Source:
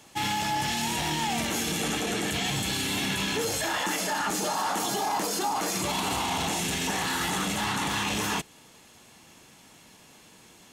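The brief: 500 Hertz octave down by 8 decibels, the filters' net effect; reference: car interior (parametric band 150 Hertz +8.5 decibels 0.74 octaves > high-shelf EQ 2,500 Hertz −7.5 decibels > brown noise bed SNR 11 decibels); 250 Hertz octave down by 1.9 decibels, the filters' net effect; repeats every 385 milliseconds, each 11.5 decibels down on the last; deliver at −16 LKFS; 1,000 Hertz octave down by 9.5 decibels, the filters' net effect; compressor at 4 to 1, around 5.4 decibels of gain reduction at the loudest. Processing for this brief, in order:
parametric band 250 Hz −5.5 dB
parametric band 500 Hz −6.5 dB
parametric band 1,000 Hz −8.5 dB
downward compressor 4 to 1, threshold −34 dBFS
parametric band 150 Hz +8.5 dB 0.74 octaves
high-shelf EQ 2,500 Hz −7.5 dB
repeating echo 385 ms, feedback 27%, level −11.5 dB
brown noise bed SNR 11 dB
level +21 dB

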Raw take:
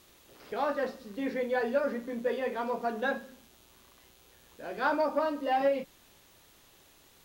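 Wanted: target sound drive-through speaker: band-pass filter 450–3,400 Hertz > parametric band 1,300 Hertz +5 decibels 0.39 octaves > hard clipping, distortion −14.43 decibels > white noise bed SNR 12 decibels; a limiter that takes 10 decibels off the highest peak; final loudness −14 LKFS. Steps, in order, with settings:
brickwall limiter −27.5 dBFS
band-pass filter 450–3,400 Hz
parametric band 1,300 Hz +5 dB 0.39 octaves
hard clipping −33 dBFS
white noise bed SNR 12 dB
level +26.5 dB

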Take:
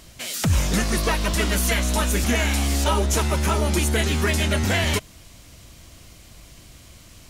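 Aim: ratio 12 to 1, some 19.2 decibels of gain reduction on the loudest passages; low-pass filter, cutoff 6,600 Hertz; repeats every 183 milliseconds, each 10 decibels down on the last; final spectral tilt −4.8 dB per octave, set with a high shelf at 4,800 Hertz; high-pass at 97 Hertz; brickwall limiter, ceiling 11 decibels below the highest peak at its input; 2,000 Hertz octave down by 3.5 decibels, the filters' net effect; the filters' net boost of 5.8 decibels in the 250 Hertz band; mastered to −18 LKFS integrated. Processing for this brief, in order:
high-pass filter 97 Hz
low-pass filter 6,600 Hz
parametric band 250 Hz +7.5 dB
parametric band 2,000 Hz −3.5 dB
high-shelf EQ 4,800 Hz −5 dB
downward compressor 12 to 1, threshold −34 dBFS
brickwall limiter −33 dBFS
repeating echo 183 ms, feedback 32%, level −10 dB
level +24.5 dB

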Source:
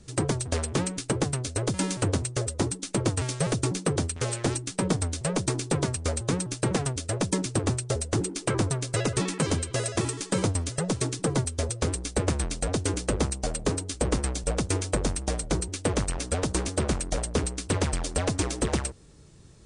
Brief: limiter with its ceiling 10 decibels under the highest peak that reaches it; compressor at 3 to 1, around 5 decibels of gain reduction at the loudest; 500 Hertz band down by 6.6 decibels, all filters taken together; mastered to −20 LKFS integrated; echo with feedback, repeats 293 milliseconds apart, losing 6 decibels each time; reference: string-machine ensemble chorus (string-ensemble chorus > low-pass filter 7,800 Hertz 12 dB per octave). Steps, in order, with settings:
parametric band 500 Hz −8.5 dB
downward compressor 3 to 1, threshold −29 dBFS
brickwall limiter −26.5 dBFS
repeating echo 293 ms, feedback 50%, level −6 dB
string-ensemble chorus
low-pass filter 7,800 Hz 12 dB per octave
level +18.5 dB

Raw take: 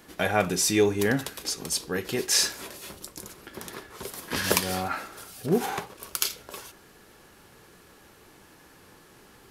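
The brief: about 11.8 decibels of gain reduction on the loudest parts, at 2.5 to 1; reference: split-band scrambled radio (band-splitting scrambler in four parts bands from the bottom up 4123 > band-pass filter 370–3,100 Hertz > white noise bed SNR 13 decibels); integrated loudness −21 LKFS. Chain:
downward compressor 2.5 to 1, threshold −35 dBFS
band-splitting scrambler in four parts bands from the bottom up 4123
band-pass filter 370–3,100 Hz
white noise bed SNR 13 dB
level +16.5 dB

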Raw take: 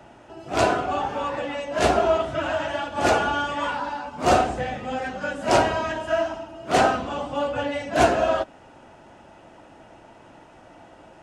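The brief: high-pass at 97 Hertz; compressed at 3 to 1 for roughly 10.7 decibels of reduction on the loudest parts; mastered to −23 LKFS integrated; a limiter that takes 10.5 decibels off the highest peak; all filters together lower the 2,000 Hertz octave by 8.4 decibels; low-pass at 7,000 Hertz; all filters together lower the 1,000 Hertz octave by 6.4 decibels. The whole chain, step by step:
high-pass filter 97 Hz
low-pass filter 7,000 Hz
parametric band 1,000 Hz −8 dB
parametric band 2,000 Hz −8.5 dB
downward compressor 3 to 1, threshold −32 dBFS
level +15.5 dB
brickwall limiter −14 dBFS

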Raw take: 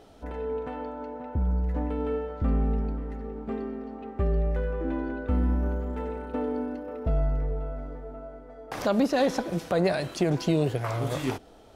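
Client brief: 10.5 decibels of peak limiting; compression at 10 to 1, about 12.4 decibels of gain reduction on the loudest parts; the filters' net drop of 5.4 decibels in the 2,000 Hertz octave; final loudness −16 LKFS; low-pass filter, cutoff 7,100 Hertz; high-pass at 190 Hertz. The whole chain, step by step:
high-pass filter 190 Hz
low-pass filter 7,100 Hz
parametric band 2,000 Hz −7.5 dB
downward compressor 10 to 1, threshold −33 dBFS
level +25.5 dB
brickwall limiter −7.5 dBFS

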